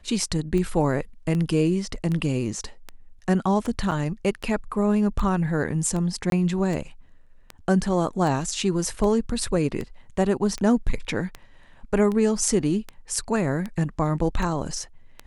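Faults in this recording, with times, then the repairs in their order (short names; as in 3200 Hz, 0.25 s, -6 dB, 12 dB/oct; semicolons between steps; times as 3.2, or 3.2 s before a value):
tick 78 rpm -18 dBFS
3.91–3.92 gap 6 ms
6.3–6.32 gap 22 ms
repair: de-click; interpolate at 3.91, 6 ms; interpolate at 6.3, 22 ms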